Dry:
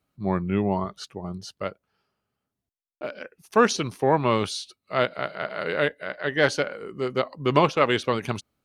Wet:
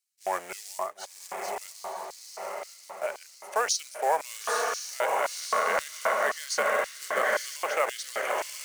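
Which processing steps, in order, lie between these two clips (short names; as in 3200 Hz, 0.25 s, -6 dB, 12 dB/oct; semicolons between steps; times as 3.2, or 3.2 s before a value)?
octaver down 1 oct, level +2 dB; diffused feedback echo 0.965 s, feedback 51%, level -3 dB; limiter -14.5 dBFS, peak gain reduction 10.5 dB; low shelf 67 Hz -10.5 dB; short-mantissa float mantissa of 2-bit; 5.52–7.57 small resonant body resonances 210/1100 Hz, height 13 dB; LFO high-pass square 1.9 Hz 730–4600 Hz; graphic EQ 125/250/500/1000/2000/4000/8000 Hz -6/-6/+4/-3/+7/-9/+8 dB; gain -3 dB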